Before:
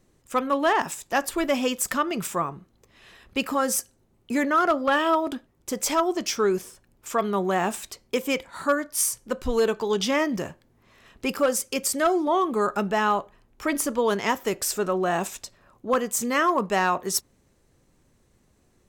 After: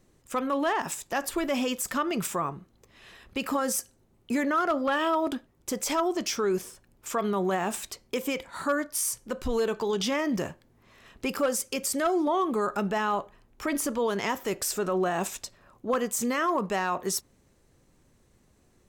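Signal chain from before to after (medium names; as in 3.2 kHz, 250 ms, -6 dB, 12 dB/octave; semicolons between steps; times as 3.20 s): peak limiter -19 dBFS, peak gain reduction 7.5 dB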